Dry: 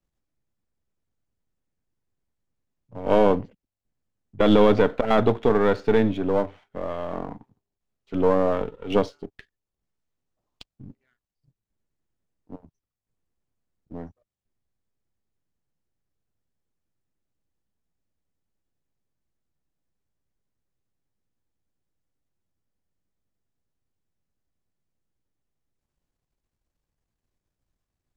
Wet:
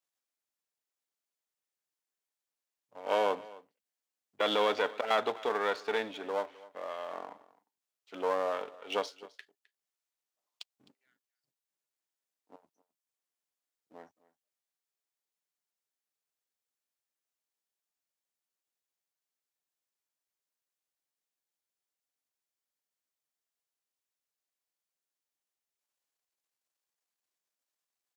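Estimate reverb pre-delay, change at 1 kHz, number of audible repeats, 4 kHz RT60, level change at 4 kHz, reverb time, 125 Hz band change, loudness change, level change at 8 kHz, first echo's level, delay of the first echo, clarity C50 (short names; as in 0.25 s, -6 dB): none, -6.0 dB, 1, none, -1.0 dB, none, under -25 dB, -11.0 dB, n/a, -20.5 dB, 0.26 s, none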